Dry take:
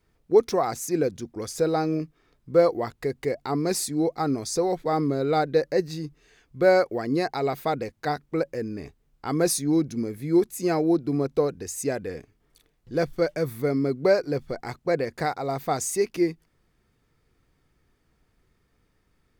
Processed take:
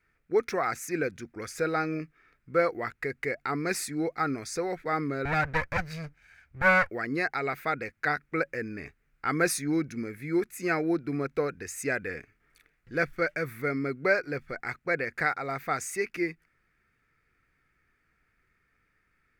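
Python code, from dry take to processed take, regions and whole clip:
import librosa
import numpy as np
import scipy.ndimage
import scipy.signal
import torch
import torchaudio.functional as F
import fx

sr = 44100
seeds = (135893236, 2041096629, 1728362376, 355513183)

y = fx.chain(x, sr, fx.lower_of_two(delay_ms=1.3),
    fx.peak_eq(hz=79.0, db=11.5, octaves=1.0), at=(5.25, 6.9))
y = fx.band_shelf(y, sr, hz=1800.0, db=14.0, octaves=1.2)
y = fx.rider(y, sr, range_db=10, speed_s=2.0)
y = y * 10.0 ** (-7.5 / 20.0)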